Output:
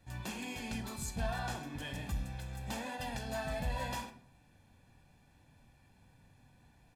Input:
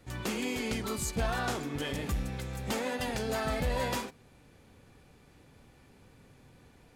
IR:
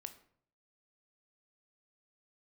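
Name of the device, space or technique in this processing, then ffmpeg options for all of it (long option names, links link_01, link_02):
microphone above a desk: -filter_complex "[0:a]aecho=1:1:1.2:0.58[link_01];[1:a]atrim=start_sample=2205[link_02];[link_01][link_02]afir=irnorm=-1:irlink=0,volume=-3dB"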